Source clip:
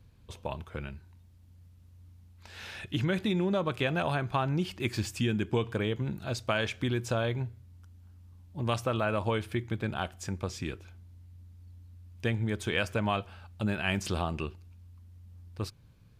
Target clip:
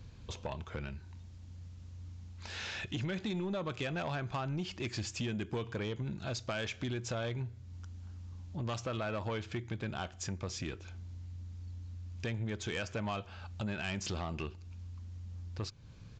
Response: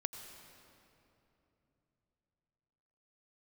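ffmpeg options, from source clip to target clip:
-af "highshelf=frequency=5500:gain=6.5,acompressor=threshold=-48dB:ratio=2,aresample=16000,asoftclip=type=tanh:threshold=-36.5dB,aresample=44100,volume=7dB"

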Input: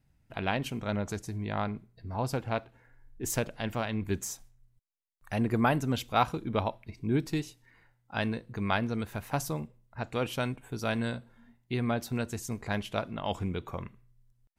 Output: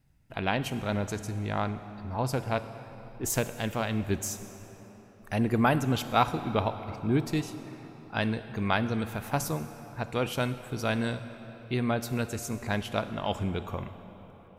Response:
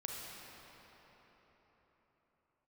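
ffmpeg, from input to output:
-filter_complex "[0:a]asplit=2[link_01][link_02];[1:a]atrim=start_sample=2205,highshelf=frequency=5800:gain=7[link_03];[link_02][link_03]afir=irnorm=-1:irlink=0,volume=-8dB[link_04];[link_01][link_04]amix=inputs=2:normalize=0"

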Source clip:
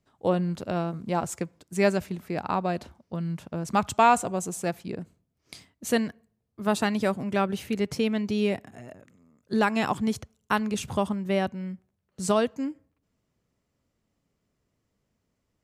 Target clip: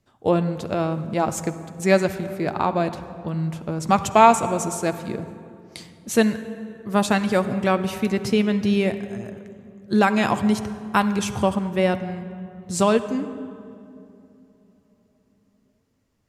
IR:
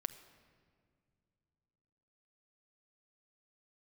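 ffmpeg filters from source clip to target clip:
-filter_complex "[1:a]atrim=start_sample=2205,asetrate=31752,aresample=44100[link_01];[0:a][link_01]afir=irnorm=-1:irlink=0,asetrate=42336,aresample=44100,volume=5dB"

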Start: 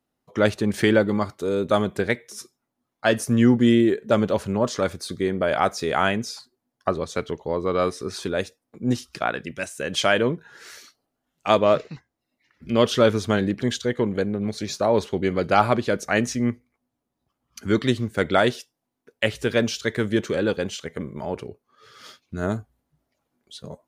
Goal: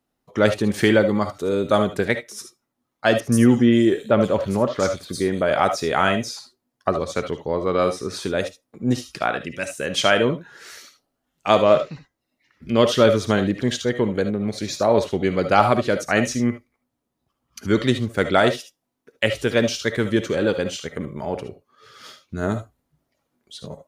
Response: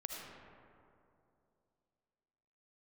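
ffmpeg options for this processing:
-filter_complex "[0:a]asettb=1/sr,asplit=3[link_01][link_02][link_03];[link_01]atrim=end=3.204[link_04];[link_02]atrim=start=3.2:end=5.46,asetpts=PTS-STARTPTS,afade=type=in:duration=0.004:curve=qsin,afade=type=out:start_time=2.256:duration=0.004:curve=qsin,acrossover=split=3600[link_05][link_06];[link_06]adelay=120[link_07];[link_05][link_07]amix=inputs=2:normalize=0,atrim=end_sample=99666[link_08];[link_03]atrim=start=5.456[link_09];[link_04][link_08]acrossfade=duration=0.004:curve1=hsin:curve2=qsin[link_10];[link_10][link_09]acrossfade=duration=0.004:curve1=qsin:curve2=hsin[link_11];[1:a]atrim=start_sample=2205,atrim=end_sample=3528[link_12];[link_11][link_12]afir=irnorm=-1:irlink=0,volume=6dB"

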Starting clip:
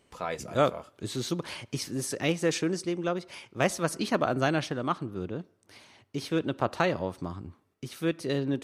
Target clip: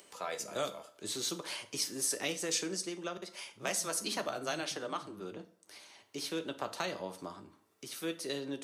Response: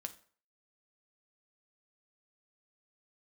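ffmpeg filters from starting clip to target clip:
-filter_complex "[0:a]highpass=96,asettb=1/sr,asplit=3[link_01][link_02][link_03];[link_01]atrim=end=3.174[link_04];[link_02]atrim=start=3.17:end=5.37,asetpts=PTS-STARTPTS,afade=type=in:duration=0.004:curve=qsin,afade=type=out:start_time=2.196:duration=0.004:curve=qsin,acrossover=split=190[link_05][link_06];[link_06]adelay=50[link_07];[link_05][link_07]amix=inputs=2:normalize=0,atrim=end_sample=97020[link_08];[link_03]atrim=start=5.366[link_09];[link_04][link_08]acrossfade=duration=0.004:curve1=hsin:curve2=qsin[link_10];[link_10][link_09]acrossfade=duration=0.004:curve1=qsin:curve2=hsin,acrossover=split=200|3000[link_11][link_12][link_13];[link_12]acompressor=threshold=-30dB:ratio=6[link_14];[link_11][link_14][link_13]amix=inputs=3:normalize=0,bass=frequency=250:gain=-10,treble=frequency=4000:gain=7[link_15];[1:a]atrim=start_sample=2205[link_16];[link_15][link_16]afir=irnorm=-1:irlink=0,acompressor=mode=upward:threshold=-51dB:ratio=2.5,lowshelf=frequency=200:gain=-4.5"

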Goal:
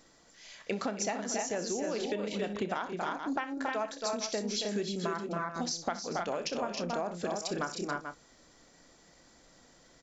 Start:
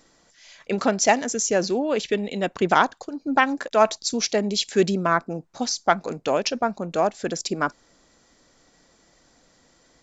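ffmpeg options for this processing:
ffmpeg -i in.wav -filter_complex "[0:a]asplit=2[link_01][link_02];[link_02]adelay=29,volume=-12.5dB[link_03];[link_01][link_03]amix=inputs=2:normalize=0,aecho=1:1:62|275|309|435:0.2|0.398|0.501|0.188,acompressor=threshold=-27dB:ratio=12,volume=-3dB" out.wav

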